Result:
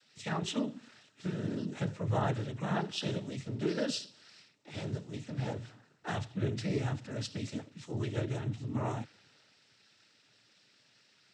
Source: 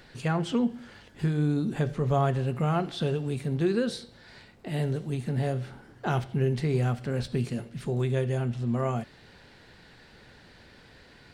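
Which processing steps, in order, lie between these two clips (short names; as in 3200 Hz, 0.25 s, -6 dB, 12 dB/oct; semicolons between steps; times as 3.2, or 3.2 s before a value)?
high shelf 2400 Hz +10 dB; noise vocoder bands 12; three-band expander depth 40%; gain -8 dB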